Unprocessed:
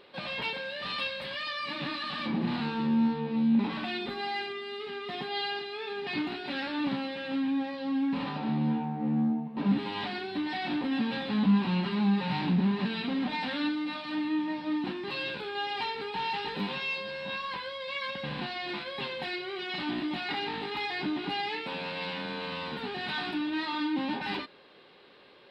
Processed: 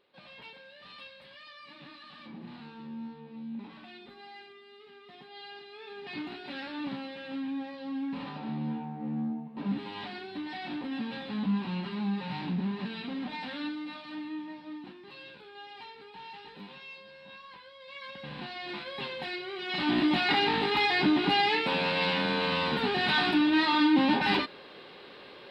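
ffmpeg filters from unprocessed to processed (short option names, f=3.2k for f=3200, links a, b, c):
-af "volume=15.5dB,afade=t=in:st=5.34:d=0.97:silence=0.334965,afade=t=out:st=13.8:d=1.16:silence=0.398107,afade=t=in:st=17.74:d=1.21:silence=0.251189,afade=t=in:st=19.61:d=0.42:silence=0.354813"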